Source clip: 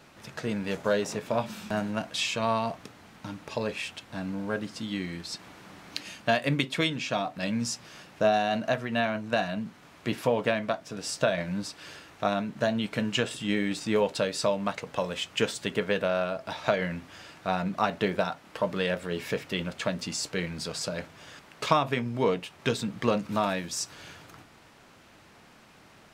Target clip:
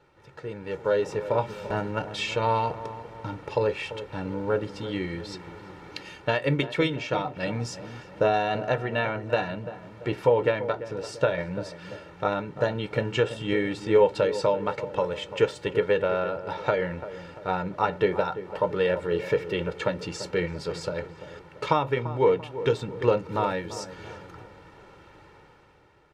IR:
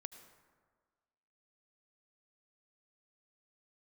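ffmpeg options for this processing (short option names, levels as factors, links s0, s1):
-filter_complex "[0:a]lowpass=f=1400:p=1,aecho=1:1:2.2:0.73,dynaudnorm=f=200:g=9:m=3.55,asplit=2[s0][s1];[s1]adelay=341,lowpass=f=1100:p=1,volume=0.251,asplit=2[s2][s3];[s3]adelay=341,lowpass=f=1100:p=1,volume=0.51,asplit=2[s4][s5];[s5]adelay=341,lowpass=f=1100:p=1,volume=0.51,asplit=2[s6][s7];[s7]adelay=341,lowpass=f=1100:p=1,volume=0.51,asplit=2[s8][s9];[s9]adelay=341,lowpass=f=1100:p=1,volume=0.51[s10];[s2][s4][s6][s8][s10]amix=inputs=5:normalize=0[s11];[s0][s11]amix=inputs=2:normalize=0,volume=0.501"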